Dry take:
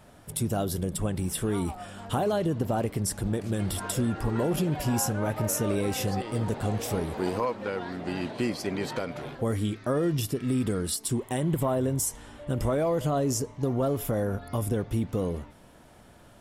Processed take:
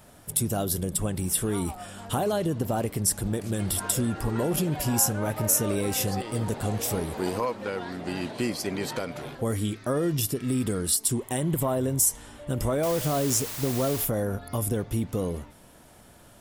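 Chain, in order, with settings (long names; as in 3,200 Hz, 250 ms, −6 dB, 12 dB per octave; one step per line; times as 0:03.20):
high-shelf EQ 6,300 Hz +10.5 dB
0:12.83–0:14.05: bit-depth reduction 6 bits, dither triangular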